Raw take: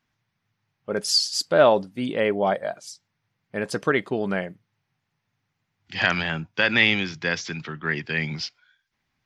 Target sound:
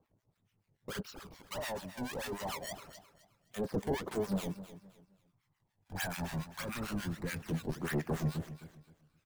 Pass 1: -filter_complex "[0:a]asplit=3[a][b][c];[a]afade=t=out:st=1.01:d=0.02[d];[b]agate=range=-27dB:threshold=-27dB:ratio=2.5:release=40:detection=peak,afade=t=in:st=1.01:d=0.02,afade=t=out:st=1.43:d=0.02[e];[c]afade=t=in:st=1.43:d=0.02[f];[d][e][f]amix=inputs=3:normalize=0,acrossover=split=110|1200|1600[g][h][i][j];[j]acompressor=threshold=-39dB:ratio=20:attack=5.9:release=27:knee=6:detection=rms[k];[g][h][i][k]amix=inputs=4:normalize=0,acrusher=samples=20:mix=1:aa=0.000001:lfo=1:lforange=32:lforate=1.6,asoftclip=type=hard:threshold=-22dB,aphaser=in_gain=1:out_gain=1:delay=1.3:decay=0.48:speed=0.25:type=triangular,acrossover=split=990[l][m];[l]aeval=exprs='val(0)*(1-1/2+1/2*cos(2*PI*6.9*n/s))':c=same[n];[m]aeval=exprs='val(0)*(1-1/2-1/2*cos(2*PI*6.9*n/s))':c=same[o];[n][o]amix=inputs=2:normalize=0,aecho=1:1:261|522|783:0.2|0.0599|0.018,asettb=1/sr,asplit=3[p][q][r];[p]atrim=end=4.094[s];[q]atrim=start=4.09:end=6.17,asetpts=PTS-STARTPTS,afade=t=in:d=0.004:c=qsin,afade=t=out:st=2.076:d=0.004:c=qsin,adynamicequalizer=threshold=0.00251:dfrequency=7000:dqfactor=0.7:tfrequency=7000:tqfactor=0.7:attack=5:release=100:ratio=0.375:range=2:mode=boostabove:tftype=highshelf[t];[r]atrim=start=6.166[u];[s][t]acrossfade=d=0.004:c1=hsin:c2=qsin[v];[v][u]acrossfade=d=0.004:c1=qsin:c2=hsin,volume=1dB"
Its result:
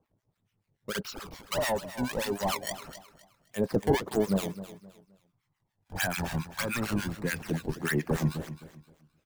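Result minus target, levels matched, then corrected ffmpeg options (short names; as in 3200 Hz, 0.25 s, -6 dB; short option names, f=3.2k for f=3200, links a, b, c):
compressor: peak gain reduction -11 dB; hard clip: distortion -5 dB
-filter_complex "[0:a]asplit=3[a][b][c];[a]afade=t=out:st=1.01:d=0.02[d];[b]agate=range=-27dB:threshold=-27dB:ratio=2.5:release=40:detection=peak,afade=t=in:st=1.01:d=0.02,afade=t=out:st=1.43:d=0.02[e];[c]afade=t=in:st=1.43:d=0.02[f];[d][e][f]amix=inputs=3:normalize=0,acrossover=split=110|1200|1600[g][h][i][j];[j]acompressor=threshold=-50.5dB:ratio=20:attack=5.9:release=27:knee=6:detection=rms[k];[g][h][i][k]amix=inputs=4:normalize=0,acrusher=samples=20:mix=1:aa=0.000001:lfo=1:lforange=32:lforate=1.6,asoftclip=type=hard:threshold=-33.5dB,aphaser=in_gain=1:out_gain=1:delay=1.3:decay=0.48:speed=0.25:type=triangular,acrossover=split=990[l][m];[l]aeval=exprs='val(0)*(1-1/2+1/2*cos(2*PI*6.9*n/s))':c=same[n];[m]aeval=exprs='val(0)*(1-1/2-1/2*cos(2*PI*6.9*n/s))':c=same[o];[n][o]amix=inputs=2:normalize=0,aecho=1:1:261|522|783:0.2|0.0599|0.018,asettb=1/sr,asplit=3[p][q][r];[p]atrim=end=4.094[s];[q]atrim=start=4.09:end=6.17,asetpts=PTS-STARTPTS,afade=t=in:d=0.004:c=qsin,afade=t=out:st=2.076:d=0.004:c=qsin,adynamicequalizer=threshold=0.00251:dfrequency=7000:dqfactor=0.7:tfrequency=7000:tqfactor=0.7:attack=5:release=100:ratio=0.375:range=2:mode=boostabove:tftype=highshelf[t];[r]atrim=start=6.166[u];[s][t]acrossfade=d=0.004:c1=hsin:c2=qsin[v];[v][u]acrossfade=d=0.004:c1=qsin:c2=hsin,volume=1dB"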